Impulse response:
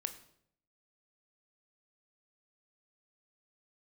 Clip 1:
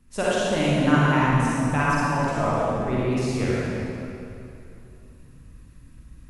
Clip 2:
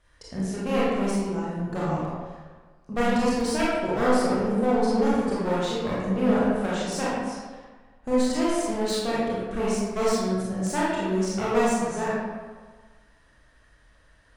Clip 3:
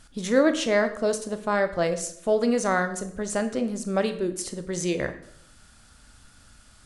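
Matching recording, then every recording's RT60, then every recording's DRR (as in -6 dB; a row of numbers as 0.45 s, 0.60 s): 3; 2.8 s, 1.4 s, 0.70 s; -8.0 dB, -8.0 dB, 8.5 dB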